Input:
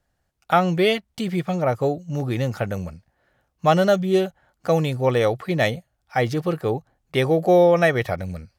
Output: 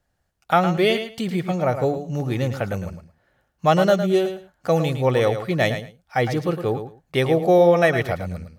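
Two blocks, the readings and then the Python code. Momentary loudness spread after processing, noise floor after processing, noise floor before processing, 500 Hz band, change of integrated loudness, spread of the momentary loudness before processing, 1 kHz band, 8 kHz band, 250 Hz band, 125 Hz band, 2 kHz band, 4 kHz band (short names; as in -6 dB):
11 LU, -72 dBFS, -73 dBFS, +0.5 dB, +0.5 dB, 11 LU, +0.5 dB, +0.5 dB, +0.5 dB, +0.5 dB, +0.5 dB, +0.5 dB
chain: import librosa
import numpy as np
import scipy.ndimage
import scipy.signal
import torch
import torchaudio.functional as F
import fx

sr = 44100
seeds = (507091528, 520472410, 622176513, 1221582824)

y = fx.echo_feedback(x, sr, ms=109, feedback_pct=17, wet_db=-9.5)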